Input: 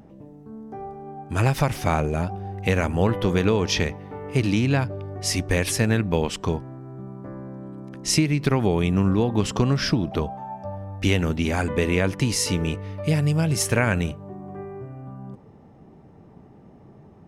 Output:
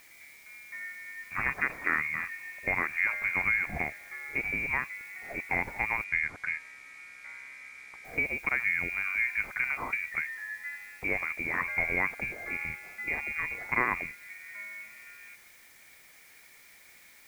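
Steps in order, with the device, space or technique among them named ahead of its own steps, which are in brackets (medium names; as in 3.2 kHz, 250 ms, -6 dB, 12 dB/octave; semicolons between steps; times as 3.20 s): scrambled radio voice (band-pass 350–3000 Hz; frequency inversion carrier 2.6 kHz; white noise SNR 24 dB); 6.04–8.05 s: Bessel low-pass 8 kHz, order 4; trim -4 dB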